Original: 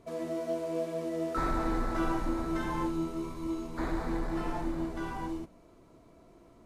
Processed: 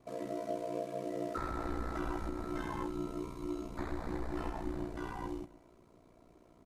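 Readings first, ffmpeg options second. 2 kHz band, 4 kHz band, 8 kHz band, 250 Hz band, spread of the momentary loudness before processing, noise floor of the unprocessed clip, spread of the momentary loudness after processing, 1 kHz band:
−6.0 dB, −6.0 dB, −5.5 dB, −6.5 dB, 5 LU, −58 dBFS, 3 LU, −5.5 dB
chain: -af "aecho=1:1:138|276|414|552:0.0794|0.0421|0.0223|0.0118,alimiter=limit=-23.5dB:level=0:latency=1:release=289,aeval=exprs='val(0)*sin(2*PI*30*n/s)':channel_layout=same,volume=-1.5dB"

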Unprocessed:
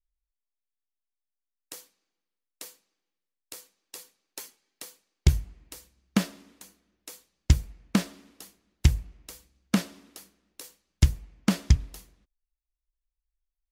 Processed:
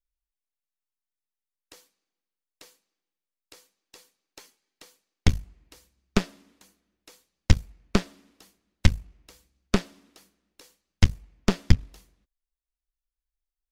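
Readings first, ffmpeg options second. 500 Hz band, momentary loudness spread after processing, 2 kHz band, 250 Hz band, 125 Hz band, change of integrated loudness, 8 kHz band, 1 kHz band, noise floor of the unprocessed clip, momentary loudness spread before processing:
+6.5 dB, 13 LU, +3.5 dB, 0.0 dB, −0.5 dB, 0.0 dB, −3.0 dB, +3.5 dB, below −85 dBFS, 21 LU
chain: -filter_complex "[0:a]acrossover=split=6400[link_01][link_02];[link_02]acompressor=threshold=-53dB:ratio=4:attack=1:release=60[link_03];[link_01][link_03]amix=inputs=2:normalize=0,aeval=exprs='0.562*(cos(1*acos(clip(val(0)/0.562,-1,1)))-cos(1*PI/2))+0.224*(cos(4*acos(clip(val(0)/0.562,-1,1)))-cos(4*PI/2))+0.0316*(cos(7*acos(clip(val(0)/0.562,-1,1)))-cos(7*PI/2))':channel_layout=same"

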